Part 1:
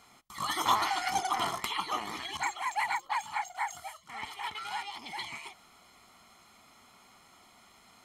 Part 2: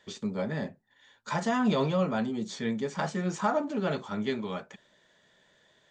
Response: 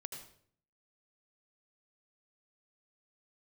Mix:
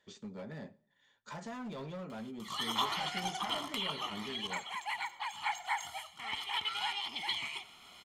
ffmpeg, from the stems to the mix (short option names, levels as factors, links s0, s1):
-filter_complex "[0:a]equalizer=f=3100:t=o:w=0.69:g=11,acompressor=mode=upward:threshold=0.00447:ratio=2.5,adelay=2100,volume=0.596,afade=t=in:st=5.28:d=0.22:silence=0.473151,asplit=2[s0][s1];[s1]volume=0.501[s2];[1:a]acompressor=threshold=0.0355:ratio=2.5,asoftclip=type=hard:threshold=0.0398,volume=0.266,asplit=2[s3][s4];[s4]volume=0.158[s5];[2:a]atrim=start_sample=2205[s6];[s2][s5]amix=inputs=2:normalize=0[s7];[s7][s6]afir=irnorm=-1:irlink=0[s8];[s0][s3][s8]amix=inputs=3:normalize=0"